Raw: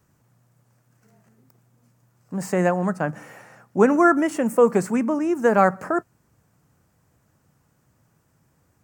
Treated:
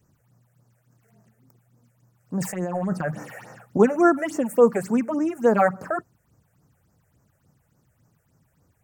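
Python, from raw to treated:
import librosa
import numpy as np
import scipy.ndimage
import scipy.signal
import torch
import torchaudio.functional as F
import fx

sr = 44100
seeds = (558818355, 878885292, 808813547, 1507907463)

y = fx.over_compress(x, sr, threshold_db=-26.0, ratio=-1.0, at=(2.4, 3.78), fade=0.02)
y = fx.phaser_stages(y, sr, stages=6, low_hz=250.0, high_hz=3500.0, hz=3.5, feedback_pct=25)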